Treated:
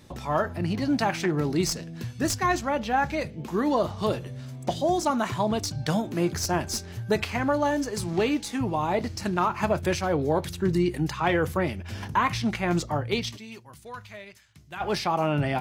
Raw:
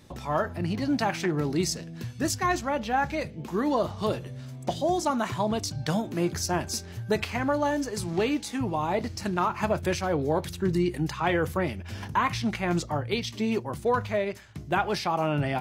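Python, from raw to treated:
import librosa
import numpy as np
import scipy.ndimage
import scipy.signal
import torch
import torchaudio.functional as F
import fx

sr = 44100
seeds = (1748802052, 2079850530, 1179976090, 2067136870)

y = fx.tracing_dist(x, sr, depth_ms=0.023)
y = fx.tone_stack(y, sr, knobs='5-5-5', at=(13.36, 14.8), fade=0.02)
y = y * 10.0 ** (1.5 / 20.0)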